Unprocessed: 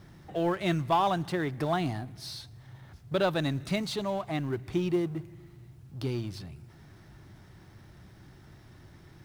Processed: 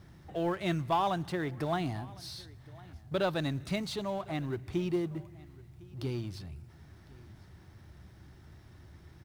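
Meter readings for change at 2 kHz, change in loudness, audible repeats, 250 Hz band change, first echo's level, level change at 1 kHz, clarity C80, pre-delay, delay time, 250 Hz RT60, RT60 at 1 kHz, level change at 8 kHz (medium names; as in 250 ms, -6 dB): -3.5 dB, -3.5 dB, 1, -3.5 dB, -23.0 dB, -3.5 dB, no reverb, no reverb, 1056 ms, no reverb, no reverb, -3.5 dB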